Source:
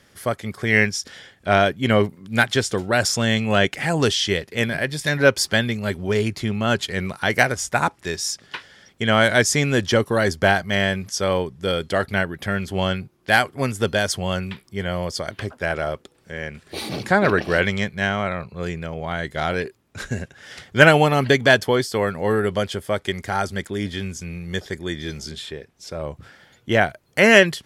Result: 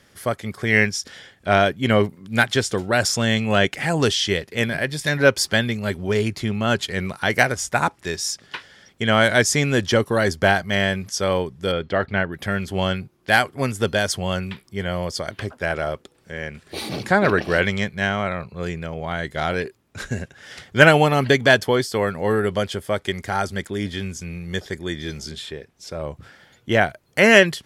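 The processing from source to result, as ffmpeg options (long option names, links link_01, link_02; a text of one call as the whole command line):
ffmpeg -i in.wav -filter_complex "[0:a]asplit=3[link_01][link_02][link_03];[link_01]afade=type=out:start_time=11.71:duration=0.02[link_04];[link_02]lowpass=3000,afade=type=in:start_time=11.71:duration=0.02,afade=type=out:start_time=12.31:duration=0.02[link_05];[link_03]afade=type=in:start_time=12.31:duration=0.02[link_06];[link_04][link_05][link_06]amix=inputs=3:normalize=0" out.wav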